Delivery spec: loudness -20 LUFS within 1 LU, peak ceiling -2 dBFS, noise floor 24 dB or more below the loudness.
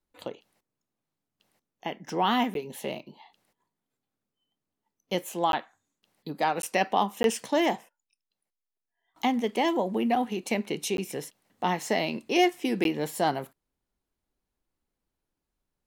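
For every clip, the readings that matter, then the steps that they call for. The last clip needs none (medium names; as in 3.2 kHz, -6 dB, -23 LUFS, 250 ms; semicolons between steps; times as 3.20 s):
dropouts 6; longest dropout 12 ms; loudness -28.5 LUFS; peak level -9.5 dBFS; loudness target -20.0 LUFS
-> interpolate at 2.54/5.52/6.62/7.23/10.97/12.84 s, 12 ms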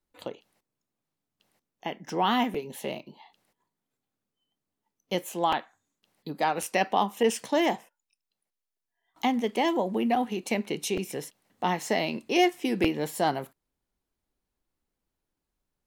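dropouts 0; loudness -28.0 LUFS; peak level -9.0 dBFS; loudness target -20.0 LUFS
-> trim +8 dB; peak limiter -2 dBFS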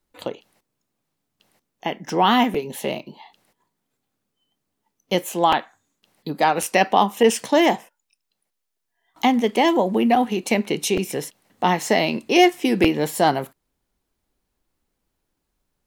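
loudness -20.0 LUFS; peak level -2.0 dBFS; noise floor -78 dBFS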